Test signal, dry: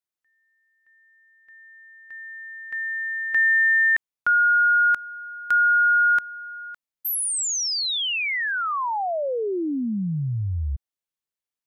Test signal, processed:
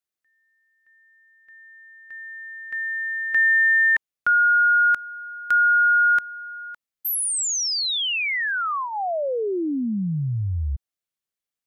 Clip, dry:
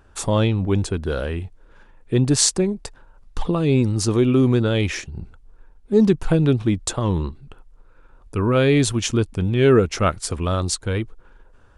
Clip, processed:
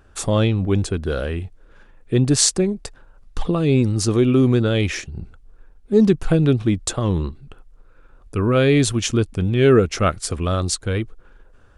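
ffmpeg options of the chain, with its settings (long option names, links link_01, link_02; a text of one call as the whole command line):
ffmpeg -i in.wav -af "equalizer=frequency=930:width_type=o:width=0.2:gain=-7.5,volume=1dB" out.wav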